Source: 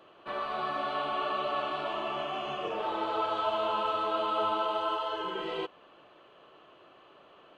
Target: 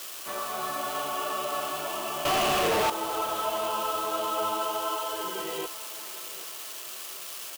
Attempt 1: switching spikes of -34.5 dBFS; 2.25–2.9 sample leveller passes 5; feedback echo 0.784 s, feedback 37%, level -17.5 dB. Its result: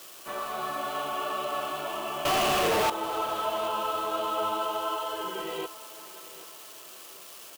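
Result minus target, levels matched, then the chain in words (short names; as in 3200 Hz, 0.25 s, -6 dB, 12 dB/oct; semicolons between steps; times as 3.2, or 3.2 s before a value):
switching spikes: distortion -7 dB
switching spikes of -27 dBFS; 2.25–2.9 sample leveller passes 5; feedback echo 0.784 s, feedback 37%, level -17.5 dB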